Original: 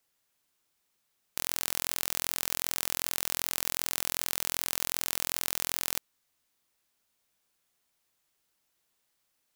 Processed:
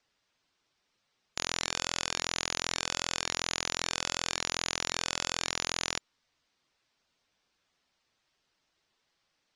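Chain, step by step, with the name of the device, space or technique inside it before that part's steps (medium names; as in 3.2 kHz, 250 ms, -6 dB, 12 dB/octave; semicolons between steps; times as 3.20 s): clip after many re-uploads (low-pass 6.1 kHz 24 dB/octave; coarse spectral quantiser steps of 15 dB); trim +4.5 dB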